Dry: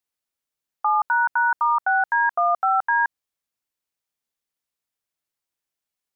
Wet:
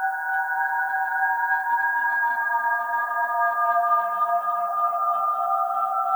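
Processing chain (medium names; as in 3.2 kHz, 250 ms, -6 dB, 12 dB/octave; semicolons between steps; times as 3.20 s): Paulstretch 9.6×, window 0.50 s, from 1.99 s; added noise violet -51 dBFS; tape echo 291 ms, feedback 70%, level -3 dB, low-pass 1.6 kHz; trim -3.5 dB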